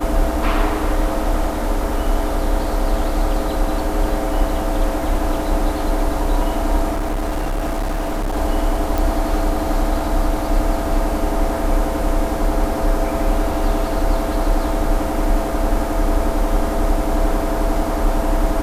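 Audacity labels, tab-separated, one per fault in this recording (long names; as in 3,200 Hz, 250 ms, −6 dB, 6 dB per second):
6.910000	8.370000	clipping −17.5 dBFS
8.980000	8.980000	click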